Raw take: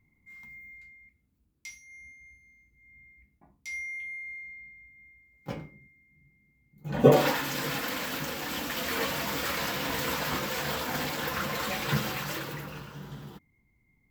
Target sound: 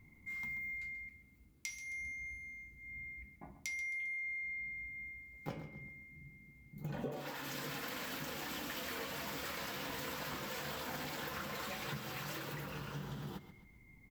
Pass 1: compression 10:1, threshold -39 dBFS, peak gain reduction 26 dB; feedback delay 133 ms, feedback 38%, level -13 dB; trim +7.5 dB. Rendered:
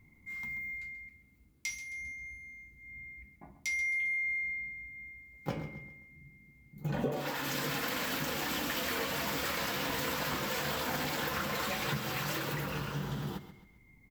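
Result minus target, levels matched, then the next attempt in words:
compression: peak gain reduction -8 dB
compression 10:1, threshold -48 dBFS, peak gain reduction 34 dB; feedback delay 133 ms, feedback 38%, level -13 dB; trim +7.5 dB

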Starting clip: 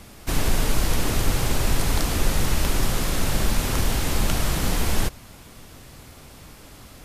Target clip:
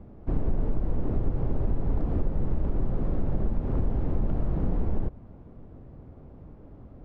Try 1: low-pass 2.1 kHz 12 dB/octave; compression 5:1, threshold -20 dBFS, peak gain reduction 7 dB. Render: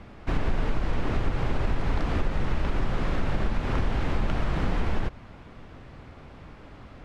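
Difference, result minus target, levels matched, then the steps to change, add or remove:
2 kHz band +18.0 dB
change: low-pass 530 Hz 12 dB/octave

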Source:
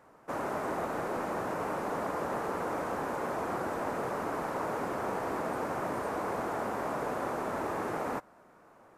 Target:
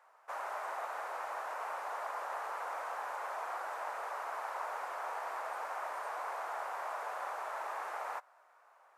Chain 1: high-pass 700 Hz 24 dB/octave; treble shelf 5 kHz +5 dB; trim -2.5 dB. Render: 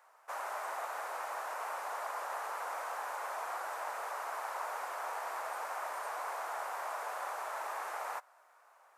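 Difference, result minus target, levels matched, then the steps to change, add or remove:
8 kHz band +6.5 dB
change: treble shelf 5 kHz -4.5 dB

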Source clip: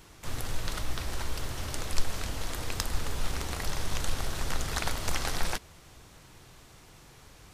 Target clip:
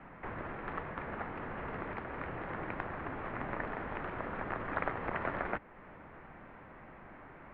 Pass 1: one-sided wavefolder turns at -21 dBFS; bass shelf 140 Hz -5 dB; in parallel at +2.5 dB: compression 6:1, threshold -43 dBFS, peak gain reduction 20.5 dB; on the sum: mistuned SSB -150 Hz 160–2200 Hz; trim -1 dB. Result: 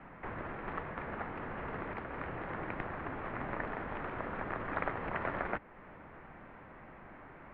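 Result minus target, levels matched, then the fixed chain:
one-sided wavefolder: distortion +17 dB
one-sided wavefolder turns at -13.5 dBFS; bass shelf 140 Hz -5 dB; in parallel at +2.5 dB: compression 6:1, threshold -43 dBFS, peak gain reduction 20.5 dB; on the sum: mistuned SSB -150 Hz 160–2200 Hz; trim -1 dB

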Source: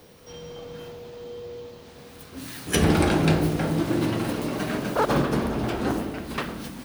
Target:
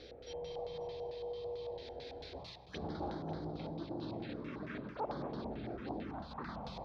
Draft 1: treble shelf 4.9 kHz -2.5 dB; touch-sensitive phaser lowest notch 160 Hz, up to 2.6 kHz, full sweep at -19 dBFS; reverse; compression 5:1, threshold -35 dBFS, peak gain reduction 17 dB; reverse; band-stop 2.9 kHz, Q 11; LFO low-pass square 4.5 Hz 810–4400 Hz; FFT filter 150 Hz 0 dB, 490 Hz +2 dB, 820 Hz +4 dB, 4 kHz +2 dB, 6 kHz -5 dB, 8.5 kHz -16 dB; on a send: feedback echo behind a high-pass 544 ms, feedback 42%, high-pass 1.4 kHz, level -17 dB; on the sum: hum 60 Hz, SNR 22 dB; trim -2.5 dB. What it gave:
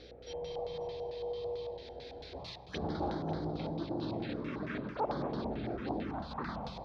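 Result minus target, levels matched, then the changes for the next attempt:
compression: peak gain reduction -5 dB
change: compression 5:1, threshold -41.5 dBFS, peak gain reduction 22.5 dB

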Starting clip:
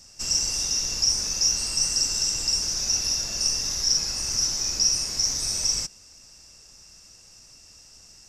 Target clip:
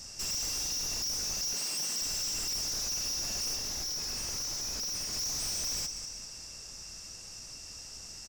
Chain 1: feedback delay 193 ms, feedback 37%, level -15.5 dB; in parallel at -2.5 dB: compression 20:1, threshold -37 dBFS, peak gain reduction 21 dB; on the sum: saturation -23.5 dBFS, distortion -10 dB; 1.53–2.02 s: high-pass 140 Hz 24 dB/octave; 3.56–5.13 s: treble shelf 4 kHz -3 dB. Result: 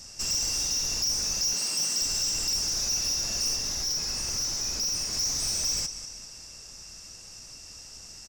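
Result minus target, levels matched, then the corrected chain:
saturation: distortion -5 dB
feedback delay 193 ms, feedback 37%, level -15.5 dB; in parallel at -2.5 dB: compression 20:1, threshold -37 dBFS, peak gain reduction 21 dB; on the sum: saturation -32 dBFS, distortion -5 dB; 1.53–2.02 s: high-pass 140 Hz 24 dB/octave; 3.56–5.13 s: treble shelf 4 kHz -3 dB

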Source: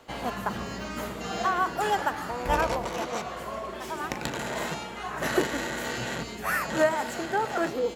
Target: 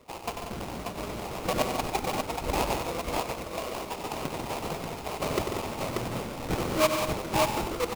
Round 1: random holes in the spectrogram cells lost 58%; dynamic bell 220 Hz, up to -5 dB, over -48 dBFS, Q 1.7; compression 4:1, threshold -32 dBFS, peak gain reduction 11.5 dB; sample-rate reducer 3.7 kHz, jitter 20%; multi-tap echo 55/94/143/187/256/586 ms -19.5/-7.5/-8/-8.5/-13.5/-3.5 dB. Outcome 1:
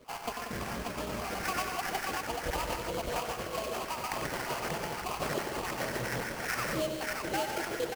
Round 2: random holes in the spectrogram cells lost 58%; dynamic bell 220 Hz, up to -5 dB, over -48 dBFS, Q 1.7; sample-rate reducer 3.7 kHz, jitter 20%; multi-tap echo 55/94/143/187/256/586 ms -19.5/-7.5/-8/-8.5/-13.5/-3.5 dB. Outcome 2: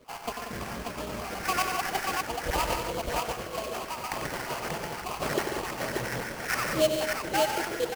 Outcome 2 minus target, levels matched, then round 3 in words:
sample-rate reducer: distortion -12 dB
random holes in the spectrogram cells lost 58%; dynamic bell 220 Hz, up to -5 dB, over -48 dBFS, Q 1.7; sample-rate reducer 1.7 kHz, jitter 20%; multi-tap echo 55/94/143/187/256/586 ms -19.5/-7.5/-8/-8.5/-13.5/-3.5 dB

